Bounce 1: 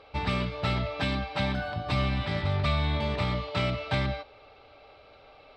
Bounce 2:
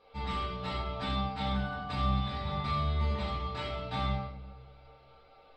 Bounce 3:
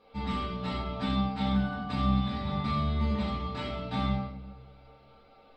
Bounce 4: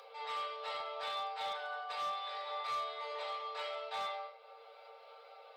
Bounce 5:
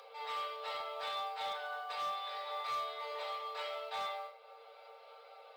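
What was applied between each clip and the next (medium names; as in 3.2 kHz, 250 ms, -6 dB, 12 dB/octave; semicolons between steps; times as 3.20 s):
inharmonic resonator 67 Hz, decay 0.25 s, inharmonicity 0.008; simulated room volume 200 m³, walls mixed, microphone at 1.8 m; trim -5 dB
peaking EQ 230 Hz +12 dB 0.7 oct
steep high-pass 440 Hz 96 dB/octave; upward compressor, threshold -44 dBFS; overload inside the chain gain 29.5 dB; trim -3 dB
modulation noise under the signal 31 dB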